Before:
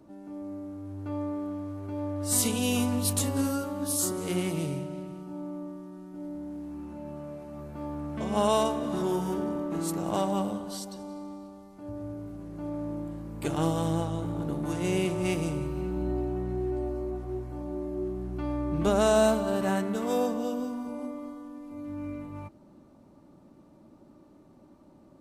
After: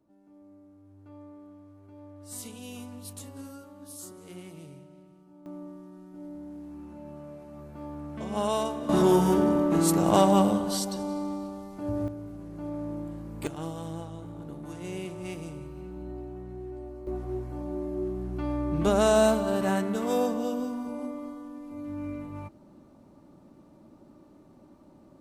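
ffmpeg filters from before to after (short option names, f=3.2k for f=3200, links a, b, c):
-af "asetnsamples=n=441:p=0,asendcmd='5.46 volume volume -3.5dB;8.89 volume volume 8dB;12.08 volume volume -0.5dB;13.47 volume volume -9dB;17.07 volume volume 1dB',volume=-15dB"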